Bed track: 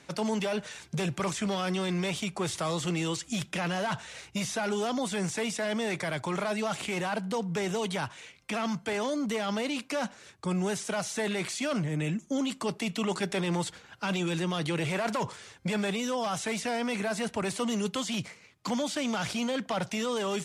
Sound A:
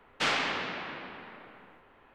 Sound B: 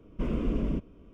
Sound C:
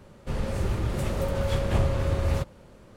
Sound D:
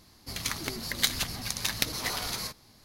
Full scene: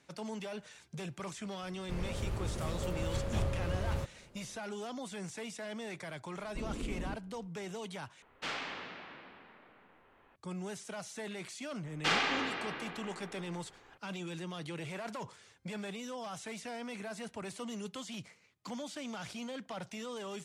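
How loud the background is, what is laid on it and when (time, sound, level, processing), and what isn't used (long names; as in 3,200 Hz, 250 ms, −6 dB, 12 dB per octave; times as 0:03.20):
bed track −11.5 dB
0:01.62: mix in C −9.5 dB
0:06.36: mix in B −10.5 dB
0:08.22: overwrite with A −10.5 dB + upward compression, threshold −45 dBFS
0:11.84: mix in A −2 dB + comb filter 2.5 ms, depth 33%
not used: D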